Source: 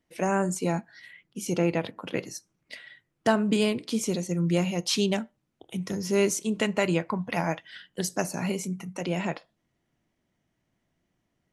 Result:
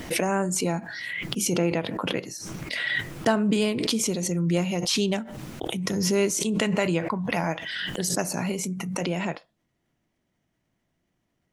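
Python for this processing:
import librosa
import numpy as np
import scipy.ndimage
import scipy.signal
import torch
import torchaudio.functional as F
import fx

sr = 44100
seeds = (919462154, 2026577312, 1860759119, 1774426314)

y = fx.pre_swell(x, sr, db_per_s=22.0)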